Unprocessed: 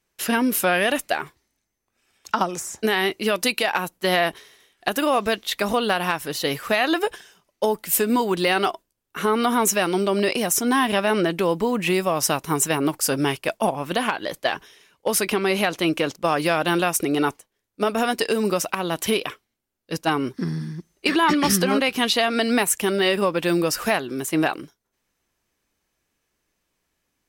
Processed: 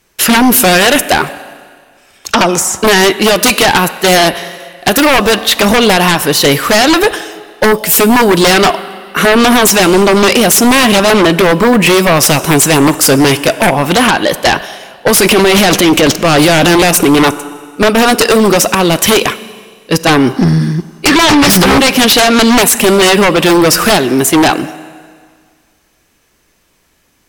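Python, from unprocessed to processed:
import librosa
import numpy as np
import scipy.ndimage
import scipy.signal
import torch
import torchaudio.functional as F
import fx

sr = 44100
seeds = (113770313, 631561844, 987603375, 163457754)

y = fx.transient(x, sr, attack_db=-5, sustain_db=9, at=(15.2, 16.91))
y = fx.rev_schroeder(y, sr, rt60_s=1.8, comb_ms=31, drr_db=18.5)
y = fx.fold_sine(y, sr, drive_db=20, ceiling_db=1.0)
y = y * 10.0 ** (-4.5 / 20.0)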